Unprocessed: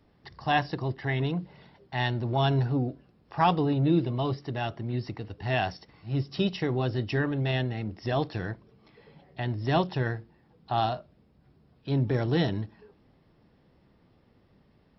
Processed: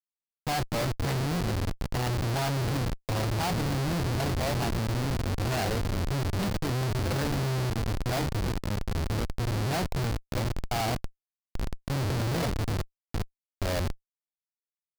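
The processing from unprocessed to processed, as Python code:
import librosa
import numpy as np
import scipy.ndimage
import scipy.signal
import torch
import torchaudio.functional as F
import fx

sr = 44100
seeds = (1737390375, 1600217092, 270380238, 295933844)

y = x + 0.33 * np.pad(x, (int(1.4 * sr / 1000.0), 0))[:len(x)]
y = fx.echo_tape(y, sr, ms=332, feedback_pct=79, wet_db=-23.0, lp_hz=1400.0, drive_db=15.0, wow_cents=37)
y = fx.echo_pitch(y, sr, ms=116, semitones=-4, count=3, db_per_echo=-6.0)
y = y + 10.0 ** (-16.0 / 20.0) * np.pad(y, (int(807 * sr / 1000.0), 0))[:len(y)]
y = fx.schmitt(y, sr, flips_db=-28.5)
y = fx.peak_eq(y, sr, hz=4600.0, db=4.5, octaves=0.45)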